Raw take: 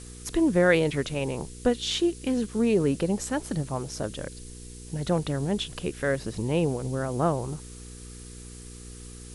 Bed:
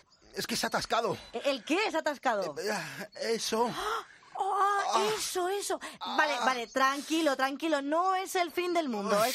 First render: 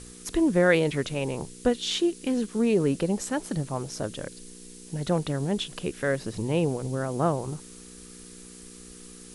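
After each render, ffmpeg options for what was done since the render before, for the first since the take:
ffmpeg -i in.wav -af "bandreject=frequency=60:width_type=h:width=4,bandreject=frequency=120:width_type=h:width=4" out.wav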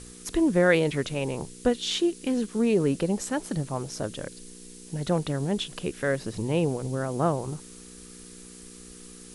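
ffmpeg -i in.wav -af anull out.wav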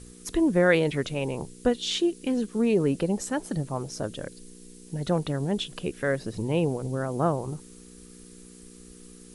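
ffmpeg -i in.wav -af "afftdn=noise_reduction=6:noise_floor=-46" out.wav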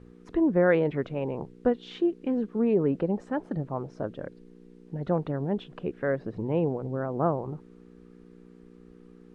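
ffmpeg -i in.wav -af "lowpass=1400,lowshelf=frequency=96:gain=-8.5" out.wav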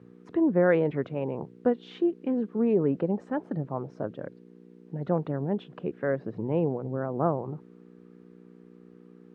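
ffmpeg -i in.wav -af "highpass=frequency=98:width=0.5412,highpass=frequency=98:width=1.3066,highshelf=frequency=3600:gain=-9" out.wav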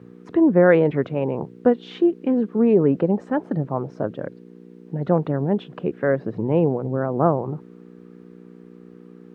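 ffmpeg -i in.wav -af "volume=7.5dB" out.wav

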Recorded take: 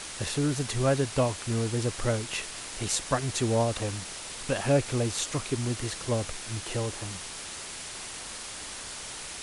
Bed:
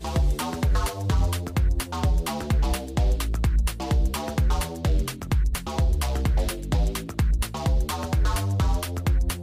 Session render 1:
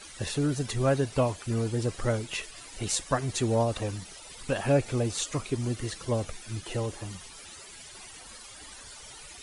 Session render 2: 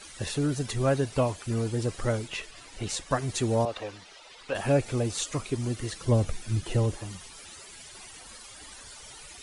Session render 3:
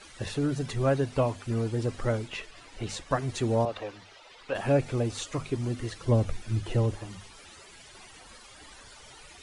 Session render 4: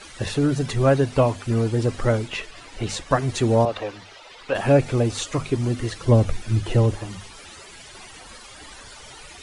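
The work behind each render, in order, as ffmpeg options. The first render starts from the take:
ffmpeg -i in.wav -af "afftdn=noise_reduction=14:noise_floor=-40" out.wav
ffmpeg -i in.wav -filter_complex "[0:a]asettb=1/sr,asplit=3[link_01][link_02][link_03];[link_01]atrim=end=2.284[link_04];[link_02]atrim=start=2.28:end=3.11,asetpts=PTS-STARTPTS,afade=type=in:duration=0.004:curve=qsin,afade=type=out:start_time=0.826:duration=0.004:curve=qsin,highshelf=frequency=8400:gain=-12[link_05];[link_03]atrim=start=3.106[link_06];[link_04][link_05]acrossfade=duration=0.004:curve1=hsin:curve2=qsin[link_07];[link_07][link_06]acrossfade=duration=0.004:curve1=qsin:curve2=hsin,asettb=1/sr,asplit=3[link_08][link_09][link_10];[link_08]atrim=end=3.654[link_11];[link_09]atrim=start=3.65:end=4.55,asetpts=PTS-STARTPTS,afade=type=in:duration=0.004:curve=qsin,afade=type=out:start_time=0.896:duration=0.004:curve=qsin,acrossover=split=360 5300:gain=0.178 1 0.126[link_12][link_13][link_14];[link_12][link_13][link_14]amix=inputs=3:normalize=0[link_15];[link_10]atrim=start=4.546[link_16];[link_11][link_15]acrossfade=duration=0.004:curve1=hsin:curve2=qsin[link_17];[link_17][link_16]acrossfade=duration=0.004:curve1=qsin:curve2=hsin,asettb=1/sr,asplit=3[link_18][link_19][link_20];[link_18]atrim=end=6.054[link_21];[link_19]atrim=start=6.05:end=6.96,asetpts=PTS-STARTPTS,afade=type=in:duration=0.004:curve=qsin,afade=type=out:start_time=0.906:duration=0.004:curve=qsin,lowshelf=frequency=280:gain=9.5[link_22];[link_20]atrim=start=6.956[link_23];[link_21][link_22]acrossfade=duration=0.004:curve1=hsin:curve2=qsin[link_24];[link_24][link_23]acrossfade=duration=0.004:curve1=qsin:curve2=hsin" out.wav
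ffmpeg -i in.wav -af "lowpass=frequency=3400:poles=1,bandreject=frequency=50:width_type=h:width=6,bandreject=frequency=100:width_type=h:width=6,bandreject=frequency=150:width_type=h:width=6,bandreject=frequency=200:width_type=h:width=6,bandreject=frequency=250:width_type=h:width=6" out.wav
ffmpeg -i in.wav -af "volume=7.5dB" out.wav

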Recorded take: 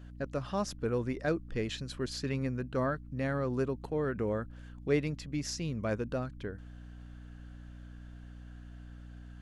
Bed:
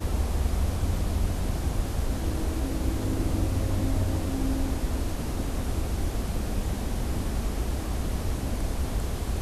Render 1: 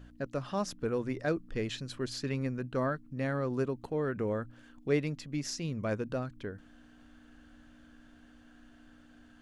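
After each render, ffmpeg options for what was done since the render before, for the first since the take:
ffmpeg -i in.wav -af "bandreject=frequency=60:width_type=h:width=4,bandreject=frequency=120:width_type=h:width=4,bandreject=frequency=180:width_type=h:width=4" out.wav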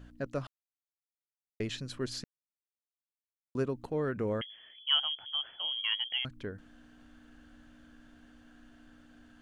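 ffmpeg -i in.wav -filter_complex "[0:a]asettb=1/sr,asplit=3[link_01][link_02][link_03];[link_01]atrim=end=4.414[link_04];[link_02]atrim=start=4.41:end=6.25,asetpts=PTS-STARTPTS,afade=type=in:duration=0.004:curve=qsin,afade=type=out:start_time=1.836:duration=0.004:curve=qsin,lowpass=frequency=2900:width_type=q:width=0.5098,lowpass=frequency=2900:width_type=q:width=0.6013,lowpass=frequency=2900:width_type=q:width=0.9,lowpass=frequency=2900:width_type=q:width=2.563,afreqshift=-3400[link_05];[link_03]atrim=start=6.246[link_06];[link_04][link_05]acrossfade=duration=0.004:curve1=hsin:curve2=qsin[link_07];[link_07][link_06]acrossfade=duration=0.004:curve1=qsin:curve2=hsin,asplit=5[link_08][link_09][link_10][link_11][link_12];[link_08]atrim=end=0.47,asetpts=PTS-STARTPTS,afade=type=out:start_time=0.466:duration=0.004:curve=hsin[link_13];[link_09]atrim=start=0.47:end=1.6,asetpts=PTS-STARTPTS,volume=0[link_14];[link_10]atrim=start=1.6:end=2.24,asetpts=PTS-STARTPTS,afade=type=in:duration=0.004:curve=hsin,afade=type=out:start_time=0.636:duration=0.004:curve=hsin[link_15];[link_11]atrim=start=2.24:end=3.55,asetpts=PTS-STARTPTS,volume=0[link_16];[link_12]atrim=start=3.55,asetpts=PTS-STARTPTS,afade=type=in:duration=0.004:curve=hsin[link_17];[link_13][link_14][link_15][link_16][link_17]concat=n=5:v=0:a=1" out.wav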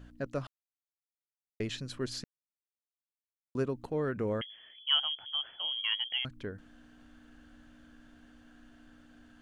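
ffmpeg -i in.wav -af anull out.wav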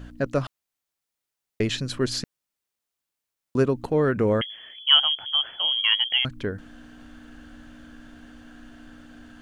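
ffmpeg -i in.wav -af "volume=11dB" out.wav

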